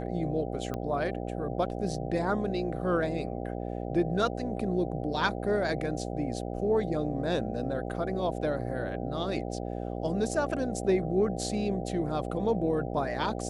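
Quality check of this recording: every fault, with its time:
buzz 60 Hz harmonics 13 -35 dBFS
0.74 s: pop -21 dBFS

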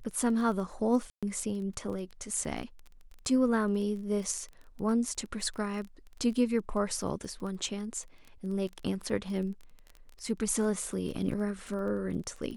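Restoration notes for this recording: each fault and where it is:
crackle 19 per s -38 dBFS
1.10–1.23 s: dropout 126 ms

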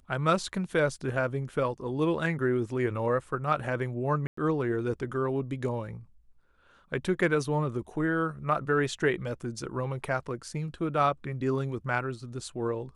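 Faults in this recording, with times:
4.27–4.37 s: dropout 104 ms

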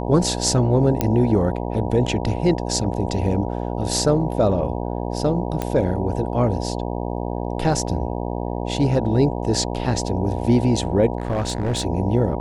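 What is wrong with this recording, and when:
buzz 60 Hz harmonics 16 -26 dBFS
1.01 s: pop -5 dBFS
5.62 s: pop -10 dBFS
11.18–11.85 s: clipped -18 dBFS

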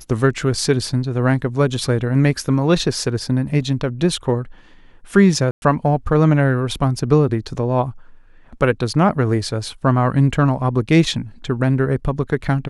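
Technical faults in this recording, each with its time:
5.51–5.62 s: dropout 111 ms

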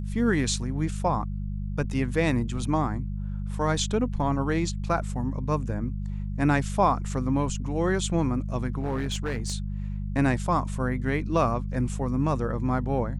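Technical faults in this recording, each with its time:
hum 50 Hz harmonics 4 -31 dBFS
8.79–9.54 s: clipped -23.5 dBFS

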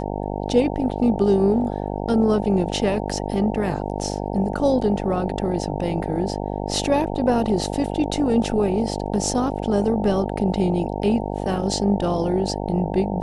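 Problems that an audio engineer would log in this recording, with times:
buzz 50 Hz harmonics 18 -27 dBFS

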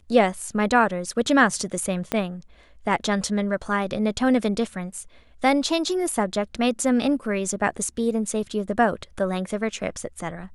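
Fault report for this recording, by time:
2.12 s: pop -10 dBFS

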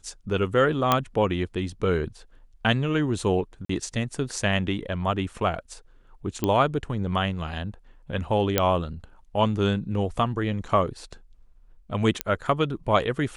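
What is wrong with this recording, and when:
0.92 s: pop -5 dBFS
3.65–3.69 s: dropout 44 ms
6.44 s: pop -11 dBFS
8.58 s: pop -4 dBFS
12.21 s: pop -7 dBFS

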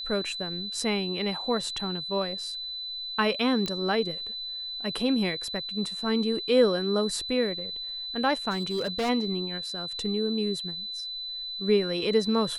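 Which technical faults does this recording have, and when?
whine 4 kHz -33 dBFS
3.66 s: pop -17 dBFS
8.50–9.10 s: clipped -24.5 dBFS

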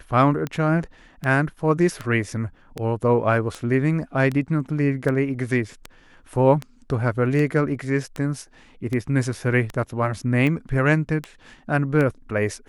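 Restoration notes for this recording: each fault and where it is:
tick 78 rpm -15 dBFS

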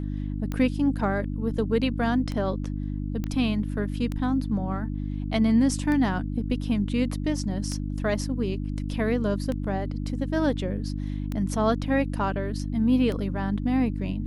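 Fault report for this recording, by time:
hum 50 Hz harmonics 6 -30 dBFS
tick 33 1/3 rpm -18 dBFS
3.24 s: pop -18 dBFS

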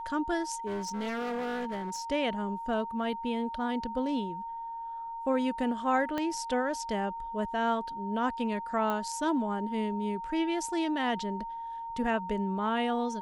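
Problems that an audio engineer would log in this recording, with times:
whine 920 Hz -36 dBFS
0.66–2.02 s: clipped -31 dBFS
6.18 s: pop -19 dBFS
8.90 s: pop -19 dBFS

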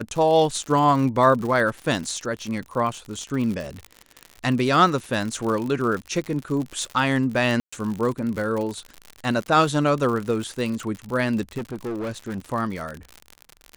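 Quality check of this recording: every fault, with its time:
crackle 83 per s -28 dBFS
7.60–7.72 s: dropout 125 ms
11.57–12.46 s: clipped -25.5 dBFS

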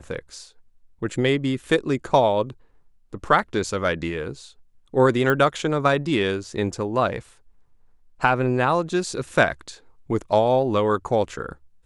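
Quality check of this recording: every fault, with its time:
5.30 s: pop -10 dBFS

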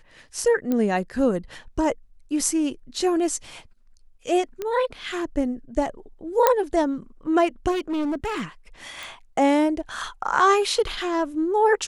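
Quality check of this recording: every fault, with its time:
0.72 s: pop -13 dBFS
4.62 s: pop -16 dBFS
6.47 s: pop -3 dBFS
7.71–8.43 s: clipped -22.5 dBFS
9.03 s: pop

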